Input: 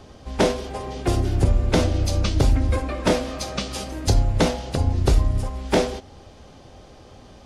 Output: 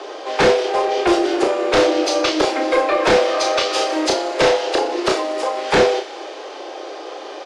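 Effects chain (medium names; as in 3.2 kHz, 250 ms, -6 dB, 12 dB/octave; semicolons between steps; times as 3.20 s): steep high-pass 320 Hz 72 dB/octave; in parallel at +2 dB: compression, threshold -36 dBFS, peak gain reduction 19 dB; on the sum: sine folder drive 10 dB, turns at -5.5 dBFS; distance through air 100 m; doubling 32 ms -5 dB; on a send: feedback echo behind a high-pass 61 ms, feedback 81%, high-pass 1.7 kHz, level -16 dB; on the sum: trim -4 dB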